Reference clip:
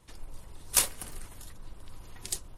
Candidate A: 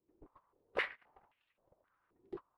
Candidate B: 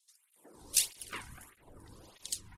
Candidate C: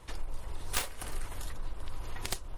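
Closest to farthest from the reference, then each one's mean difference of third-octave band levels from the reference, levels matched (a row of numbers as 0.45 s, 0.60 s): B, C, A; 7.0 dB, 9.5 dB, 15.5 dB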